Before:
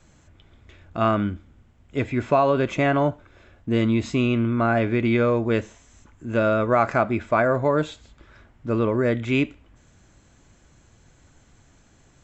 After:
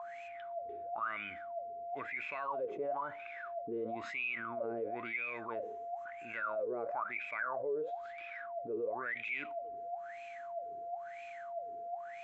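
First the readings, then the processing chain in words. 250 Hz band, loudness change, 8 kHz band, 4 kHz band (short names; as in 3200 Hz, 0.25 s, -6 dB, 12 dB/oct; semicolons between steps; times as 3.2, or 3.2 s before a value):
-26.0 dB, -17.5 dB, n/a, -18.5 dB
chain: whine 690 Hz -35 dBFS; wah 1 Hz 410–2500 Hz, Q 21; fast leveller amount 70%; gain -6 dB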